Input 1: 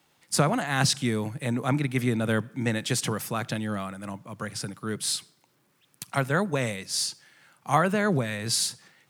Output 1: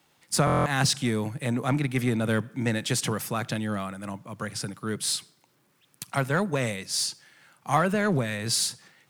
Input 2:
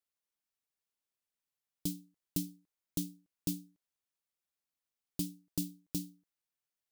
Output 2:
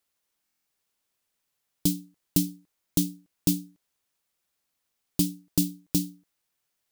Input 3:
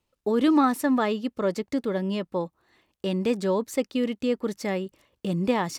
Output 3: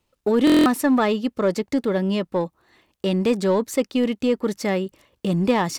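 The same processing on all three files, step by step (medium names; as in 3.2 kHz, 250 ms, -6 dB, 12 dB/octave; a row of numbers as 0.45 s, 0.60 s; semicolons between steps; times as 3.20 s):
in parallel at -7 dB: hard clipper -24 dBFS; on the sum: buffer glitch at 0.45 s, samples 1024, times 8; peak normalisation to -9 dBFS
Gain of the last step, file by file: -2.5 dB, +8.5 dB, +2.5 dB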